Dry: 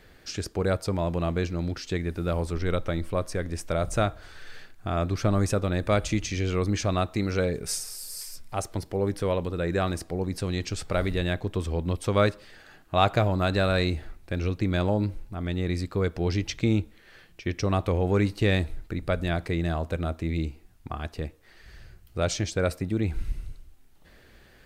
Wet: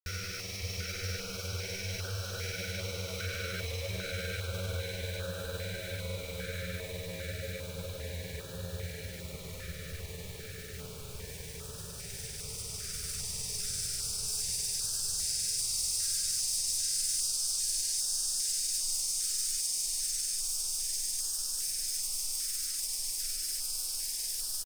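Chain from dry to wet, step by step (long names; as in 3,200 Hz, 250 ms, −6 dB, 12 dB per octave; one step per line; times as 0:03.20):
converter with a step at zero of −33 dBFS
extreme stretch with random phases 41×, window 0.25 s, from 0:07.31
guitar amp tone stack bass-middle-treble 10-0-10
granular cloud, pitch spread up and down by 0 semitones
in parallel at +3 dB: brickwall limiter −27 dBFS, peak gain reduction 10.5 dB
on the sum: bit reduction 7 bits
notch on a step sequencer 2.5 Hz 900–2,100 Hz
level −5.5 dB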